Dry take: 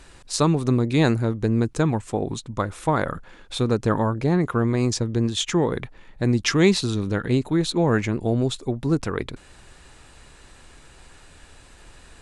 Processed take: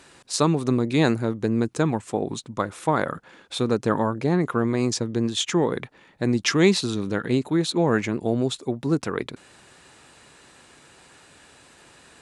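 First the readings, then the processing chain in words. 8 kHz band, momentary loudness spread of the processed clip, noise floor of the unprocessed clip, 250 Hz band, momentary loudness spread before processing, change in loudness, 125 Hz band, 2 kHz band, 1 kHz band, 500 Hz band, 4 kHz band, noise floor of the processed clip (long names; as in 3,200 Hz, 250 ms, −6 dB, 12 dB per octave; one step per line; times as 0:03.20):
0.0 dB, 9 LU, −50 dBFS, −0.5 dB, 10 LU, −1.0 dB, −4.0 dB, 0.0 dB, 0.0 dB, 0.0 dB, 0.0 dB, −53 dBFS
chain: high-pass filter 150 Hz 12 dB per octave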